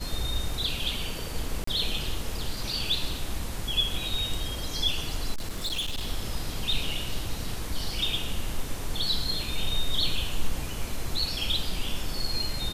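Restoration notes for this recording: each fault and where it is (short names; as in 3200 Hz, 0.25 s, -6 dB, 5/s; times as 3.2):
1.64–1.67 gap 34 ms
5.34–6.08 clipped -26.5 dBFS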